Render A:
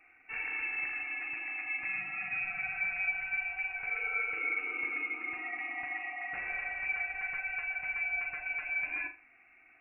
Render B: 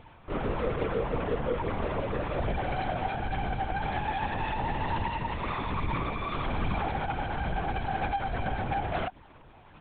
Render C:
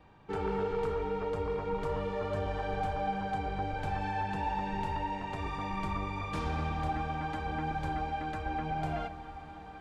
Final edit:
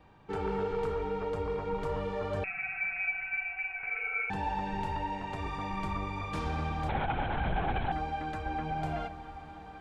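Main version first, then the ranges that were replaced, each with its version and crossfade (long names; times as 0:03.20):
C
0:02.44–0:04.30: punch in from A
0:06.89–0:07.92: punch in from B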